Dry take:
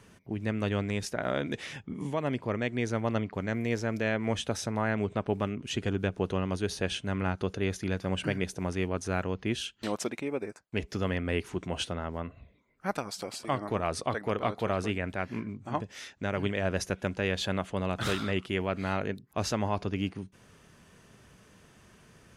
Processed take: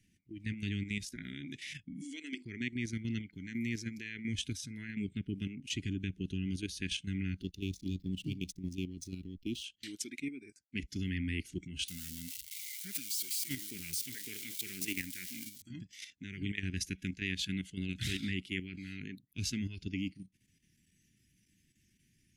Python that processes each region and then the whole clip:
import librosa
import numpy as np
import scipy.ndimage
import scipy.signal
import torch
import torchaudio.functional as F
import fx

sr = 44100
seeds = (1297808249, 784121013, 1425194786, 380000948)

y = fx.chain(x, sr, fx.ellip_bandpass(low_hz=290.0, high_hz=8400.0, order=3, stop_db=40),
    fx.high_shelf(hz=4000.0, db=9.5),
    fx.hum_notches(base_hz=50, count=9), at=(2.01, 2.45))
y = fx.chain(y, sr, fx.median_filter(points=3),
    fx.cheby1_bandstop(low_hz=1000.0, high_hz=3000.0, order=2),
    fx.backlash(play_db=-42.0), at=(7.41, 9.64))
y = fx.chain(y, sr, fx.crossing_spikes(level_db=-25.5),
    fx.low_shelf(hz=100.0, db=-10.5), at=(11.88, 15.62))
y = fx.noise_reduce_blind(y, sr, reduce_db=12)
y = scipy.signal.sosfilt(scipy.signal.ellip(3, 1.0, 40, [310.0, 2000.0], 'bandstop', fs=sr, output='sos'), y)
y = fx.level_steps(y, sr, step_db=9)
y = y * 10.0 ** (1.0 / 20.0)